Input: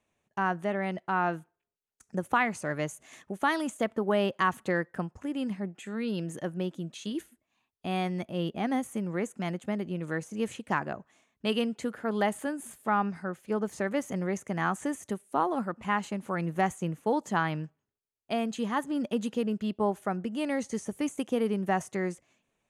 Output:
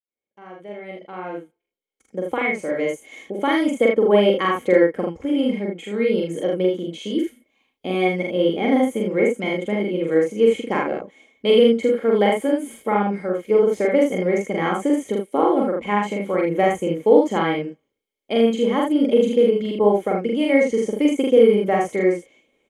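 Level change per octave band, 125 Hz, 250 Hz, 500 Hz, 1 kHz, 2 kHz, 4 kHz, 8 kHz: +4.0 dB, +10.0 dB, +15.5 dB, +5.5 dB, +6.5 dB, +10.0 dB, can't be measured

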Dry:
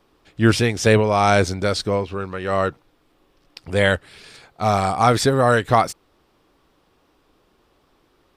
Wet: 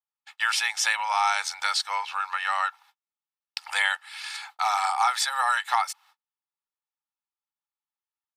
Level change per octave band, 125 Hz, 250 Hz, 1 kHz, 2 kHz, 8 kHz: below −40 dB, below −40 dB, −4.0 dB, −2.0 dB, −0.5 dB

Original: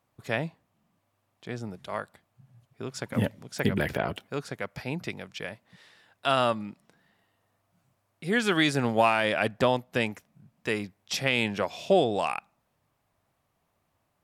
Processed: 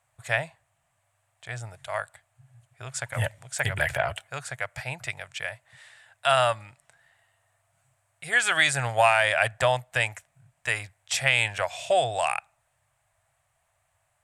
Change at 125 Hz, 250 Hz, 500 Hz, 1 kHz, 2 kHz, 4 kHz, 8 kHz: +0.5, −15.5, 0.0, +3.0, +6.0, +3.0, +9.0 decibels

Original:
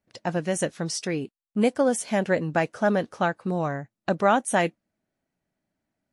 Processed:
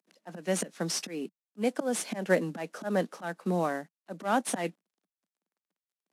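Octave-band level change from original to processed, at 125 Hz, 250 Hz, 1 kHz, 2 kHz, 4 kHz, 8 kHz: −7.5, −6.0, −8.0, −7.0, −3.0, −3.0 decibels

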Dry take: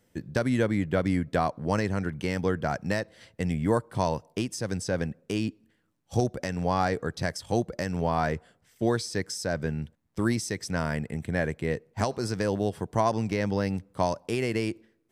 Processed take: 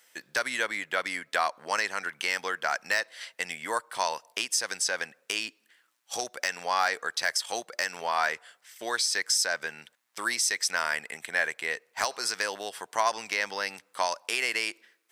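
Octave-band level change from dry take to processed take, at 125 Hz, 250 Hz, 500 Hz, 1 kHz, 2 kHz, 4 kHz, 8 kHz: −29.5, −19.0, −7.5, +1.0, +7.5, +9.0, +9.5 decibels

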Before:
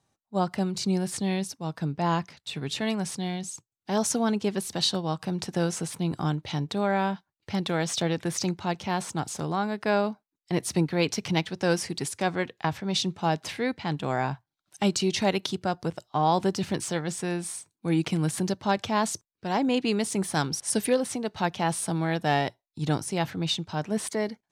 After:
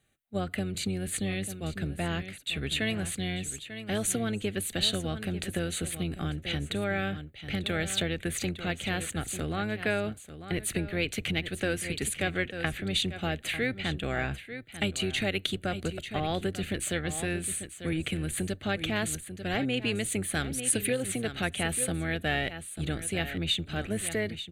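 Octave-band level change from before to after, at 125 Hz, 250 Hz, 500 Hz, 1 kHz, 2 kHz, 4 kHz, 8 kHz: −3.0, −5.0, −4.5, −10.0, +2.0, 0.0, 0.0 decibels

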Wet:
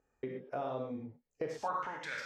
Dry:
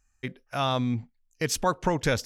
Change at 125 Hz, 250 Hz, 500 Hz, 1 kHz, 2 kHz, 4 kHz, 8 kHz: −19.5, −14.0, −9.5, −9.0, −9.5, −19.5, −24.0 decibels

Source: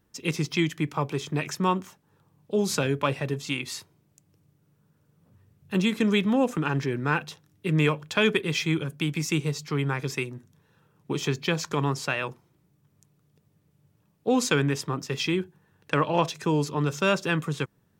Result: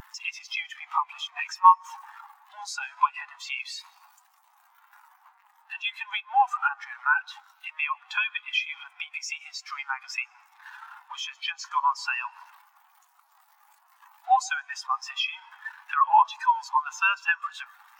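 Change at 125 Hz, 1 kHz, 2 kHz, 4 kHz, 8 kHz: below −40 dB, +8.5 dB, +2.0 dB, −1.5 dB, −5.5 dB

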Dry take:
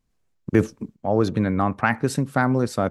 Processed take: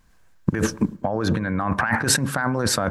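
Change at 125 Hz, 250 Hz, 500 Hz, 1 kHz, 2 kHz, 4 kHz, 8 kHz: −0.5, −1.5, −3.5, −1.0, +3.5, +12.0, +14.0 decibels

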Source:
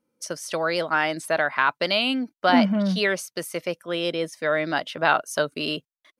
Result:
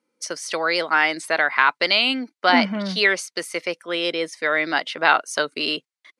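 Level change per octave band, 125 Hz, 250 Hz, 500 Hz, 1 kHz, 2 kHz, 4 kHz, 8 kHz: −6.0, −2.0, −0.5, +3.0, +5.5, +5.0, +3.0 decibels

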